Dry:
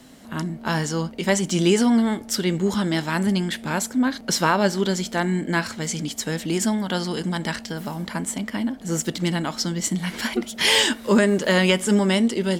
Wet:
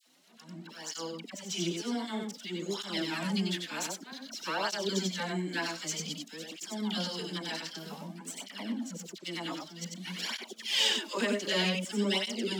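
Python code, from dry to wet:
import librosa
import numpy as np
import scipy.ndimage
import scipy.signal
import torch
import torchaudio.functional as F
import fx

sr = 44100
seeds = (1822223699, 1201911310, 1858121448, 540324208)

p1 = fx.tracing_dist(x, sr, depth_ms=0.025)
p2 = fx.band_shelf(p1, sr, hz=4000.0, db=8.0, octaves=1.7)
p3 = fx.auto_swell(p2, sr, attack_ms=270.0)
p4 = np.sign(p3) * np.maximum(np.abs(p3) - 10.0 ** (-46.0 / 20.0), 0.0)
p5 = fx.brickwall_highpass(p4, sr, low_hz=160.0)
p6 = fx.dispersion(p5, sr, late='lows', ms=66.0, hz=1100.0)
p7 = p6 + fx.echo_single(p6, sr, ms=94, db=-4.0, dry=0)
p8 = fx.flanger_cancel(p7, sr, hz=0.53, depth_ms=5.5)
y = p8 * 10.0 ** (-9.0 / 20.0)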